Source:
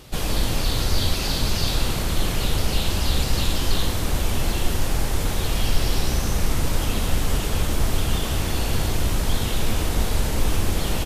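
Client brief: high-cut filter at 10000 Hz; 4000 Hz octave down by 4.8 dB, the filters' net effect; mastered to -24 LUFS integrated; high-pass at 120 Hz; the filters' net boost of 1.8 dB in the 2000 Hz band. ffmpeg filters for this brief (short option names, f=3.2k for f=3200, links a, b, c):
-af "highpass=120,lowpass=10k,equalizer=f=2k:t=o:g=4.5,equalizer=f=4k:t=o:g=-7.5,volume=4dB"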